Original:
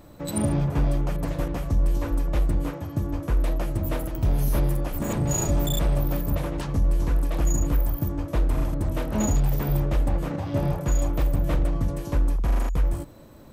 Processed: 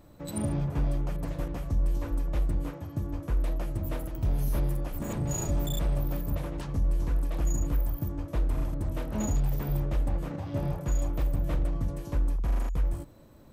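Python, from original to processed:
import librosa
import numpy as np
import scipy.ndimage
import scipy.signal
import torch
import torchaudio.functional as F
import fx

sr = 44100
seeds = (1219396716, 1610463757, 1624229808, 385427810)

y = fx.low_shelf(x, sr, hz=170.0, db=3.0)
y = y * librosa.db_to_amplitude(-7.5)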